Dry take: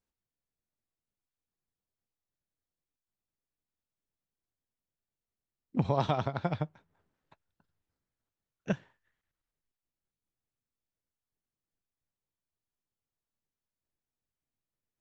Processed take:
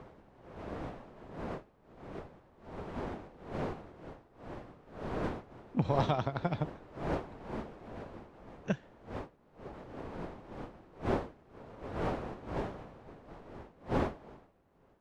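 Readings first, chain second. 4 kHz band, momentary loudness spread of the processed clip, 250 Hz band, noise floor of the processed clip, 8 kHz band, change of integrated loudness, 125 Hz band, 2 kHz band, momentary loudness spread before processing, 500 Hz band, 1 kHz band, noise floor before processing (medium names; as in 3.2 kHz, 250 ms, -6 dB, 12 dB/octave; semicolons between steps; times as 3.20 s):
+0.5 dB, 18 LU, +3.0 dB, -65 dBFS, no reading, -6.0 dB, +1.0 dB, +4.0 dB, 9 LU, +3.5 dB, +2.0 dB, under -85 dBFS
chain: wind noise 610 Hz -40 dBFS; trim -1.5 dB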